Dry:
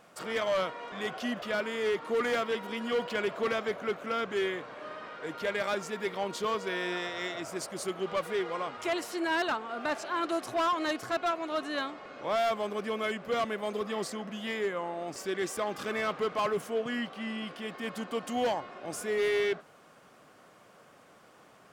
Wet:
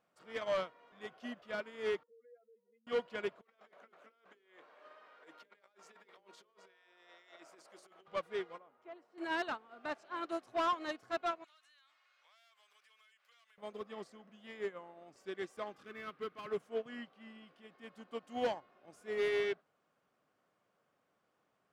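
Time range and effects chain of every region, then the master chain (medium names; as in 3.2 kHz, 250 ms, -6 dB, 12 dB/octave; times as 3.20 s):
2.03–2.87 s: spectral contrast enhancement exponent 3.2 + compression 3:1, threshold -32 dBFS + vowel filter e
3.41–8.08 s: high-pass 420 Hz + compressor with a negative ratio -40 dBFS, ratio -0.5 + hum notches 60/120/180/240/300/360/420/480/540 Hz
8.58–9.18 s: band-pass filter 320 Hz, Q 0.52 + bass shelf 350 Hz -9 dB
11.44–13.58 s: high-pass 1.5 kHz + tilt EQ +3 dB/octave + compression 16:1, threshold -41 dBFS
15.82–16.50 s: high-pass 46 Hz + high-order bell 700 Hz -8 dB 1.2 oct + decimation joined by straight lines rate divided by 3×
whole clip: treble shelf 8.8 kHz -10.5 dB; upward expansion 2.5:1, over -38 dBFS; trim -3 dB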